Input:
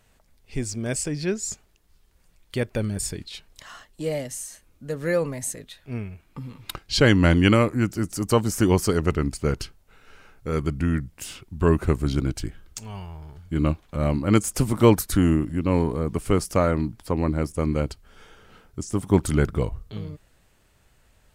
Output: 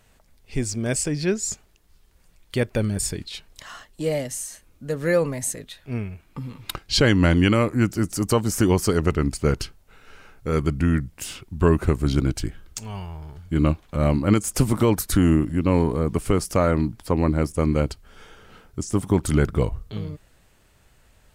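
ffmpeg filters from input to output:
-af "alimiter=limit=0.335:level=0:latency=1:release=204,volume=1.41"

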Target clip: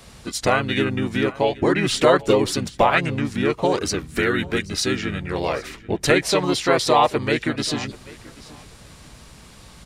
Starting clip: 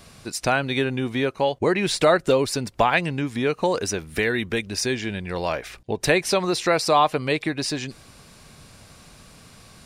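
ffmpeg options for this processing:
-filter_complex "[0:a]aeval=exprs='val(0)+0.00251*(sin(2*PI*60*n/s)+sin(2*PI*2*60*n/s)/2+sin(2*PI*3*60*n/s)/3+sin(2*PI*4*60*n/s)/4+sin(2*PI*5*60*n/s)/5)':c=same,aecho=1:1:784|1568:0.0891|0.0178,asplit=2[s0][s1];[s1]asetrate=35002,aresample=44100,atempo=1.25992,volume=0.794[s2];[s0][s2]amix=inputs=2:normalize=0"

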